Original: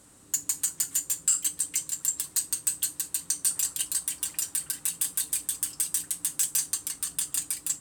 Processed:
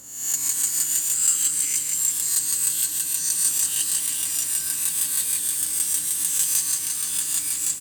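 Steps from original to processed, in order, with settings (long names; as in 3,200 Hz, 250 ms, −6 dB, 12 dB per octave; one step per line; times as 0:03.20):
peak hold with a rise ahead of every peak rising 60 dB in 0.78 s
repeating echo 176 ms, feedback 56%, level −6.5 dB
level +1 dB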